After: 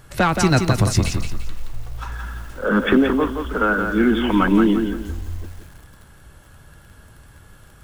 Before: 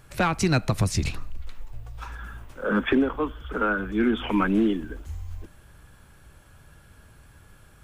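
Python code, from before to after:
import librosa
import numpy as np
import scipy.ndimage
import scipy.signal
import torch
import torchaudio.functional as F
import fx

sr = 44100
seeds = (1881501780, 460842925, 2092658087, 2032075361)

y = fx.notch(x, sr, hz=2400.0, q=11.0)
y = fx.echo_crushed(y, sr, ms=173, feedback_pct=35, bits=8, wet_db=-6.0)
y = y * 10.0 ** (5.5 / 20.0)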